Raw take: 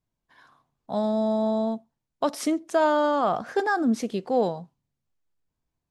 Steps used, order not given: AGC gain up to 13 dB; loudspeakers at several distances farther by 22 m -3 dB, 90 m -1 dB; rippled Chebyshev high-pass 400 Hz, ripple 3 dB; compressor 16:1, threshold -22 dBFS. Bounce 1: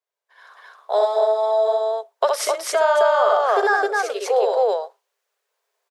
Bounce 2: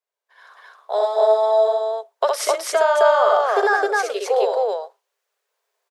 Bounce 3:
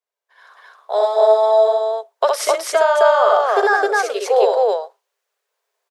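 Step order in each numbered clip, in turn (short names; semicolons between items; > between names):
loudspeakers at several distances > compressor > AGC > rippled Chebyshev high-pass; compressor > loudspeakers at several distances > AGC > rippled Chebyshev high-pass; rippled Chebyshev high-pass > compressor > loudspeakers at several distances > AGC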